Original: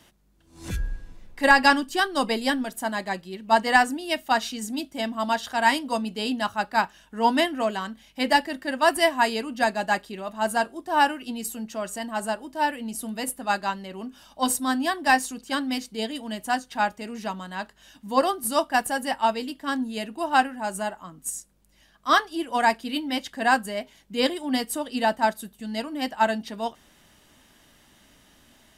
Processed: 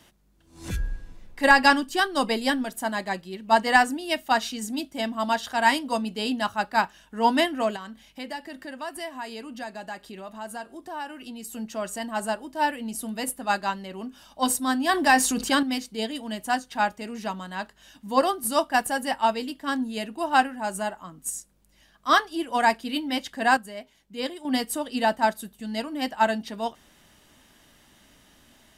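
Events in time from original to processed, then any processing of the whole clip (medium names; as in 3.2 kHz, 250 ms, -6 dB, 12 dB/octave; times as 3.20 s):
7.76–11.53 s: compression 2.5:1, threshold -38 dBFS
14.89–15.63 s: level flattener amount 50%
23.57–24.45 s: gain -7.5 dB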